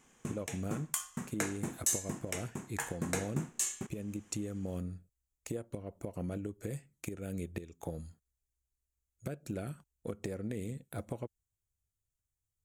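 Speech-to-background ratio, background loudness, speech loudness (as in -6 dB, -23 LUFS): -4.5 dB, -37.5 LUFS, -42.0 LUFS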